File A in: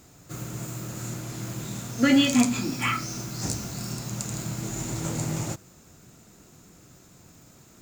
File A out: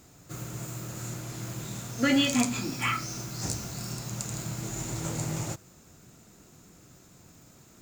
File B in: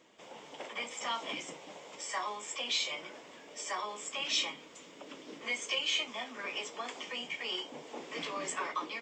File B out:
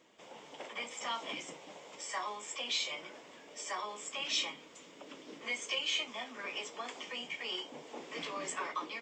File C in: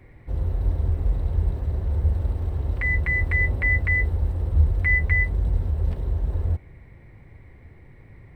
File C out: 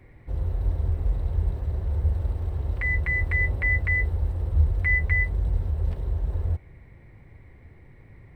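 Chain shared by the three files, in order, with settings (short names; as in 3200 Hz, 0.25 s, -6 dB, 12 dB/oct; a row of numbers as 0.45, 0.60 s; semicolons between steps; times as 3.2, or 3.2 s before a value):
dynamic EQ 240 Hz, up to -4 dB, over -43 dBFS, Q 1.8; gain -2 dB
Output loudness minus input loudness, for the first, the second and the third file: -3.5, -2.0, -2.0 LU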